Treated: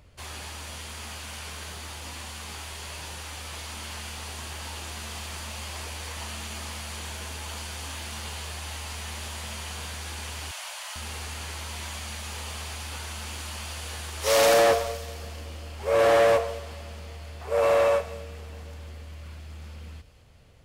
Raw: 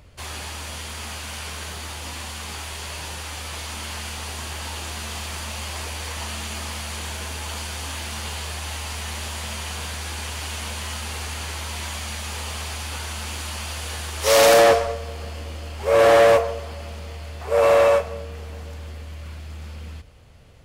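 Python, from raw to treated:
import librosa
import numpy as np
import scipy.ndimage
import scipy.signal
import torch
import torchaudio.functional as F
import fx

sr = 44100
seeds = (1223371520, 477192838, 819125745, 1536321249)

p1 = fx.steep_highpass(x, sr, hz=550.0, slope=96, at=(10.51, 10.96))
p2 = p1 + fx.echo_wet_highpass(p1, sr, ms=217, feedback_pct=56, hz=2900.0, wet_db=-12, dry=0)
y = F.gain(torch.from_numpy(p2), -5.5).numpy()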